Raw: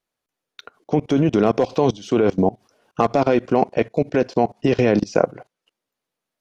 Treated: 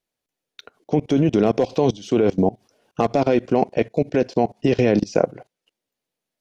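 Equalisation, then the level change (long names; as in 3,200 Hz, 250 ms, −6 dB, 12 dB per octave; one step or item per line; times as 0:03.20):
parametric band 1,200 Hz −6.5 dB 0.94 octaves
0.0 dB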